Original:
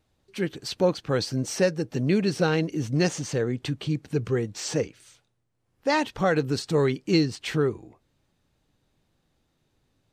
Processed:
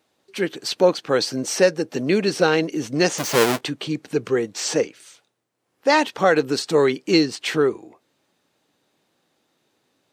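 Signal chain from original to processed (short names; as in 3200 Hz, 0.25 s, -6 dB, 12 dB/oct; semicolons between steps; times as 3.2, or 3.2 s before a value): 3.18–3.61 half-waves squared off; HPF 290 Hz 12 dB/oct; gain +7 dB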